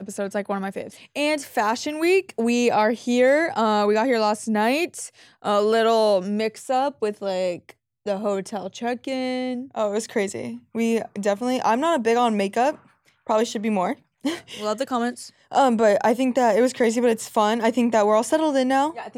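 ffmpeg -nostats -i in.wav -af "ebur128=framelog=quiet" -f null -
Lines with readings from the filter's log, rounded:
Integrated loudness:
  I:         -22.2 LUFS
  Threshold: -32.5 LUFS
Loudness range:
  LRA:         6.3 LU
  Threshold: -42.5 LUFS
  LRA low:   -26.6 LUFS
  LRA high:  -20.3 LUFS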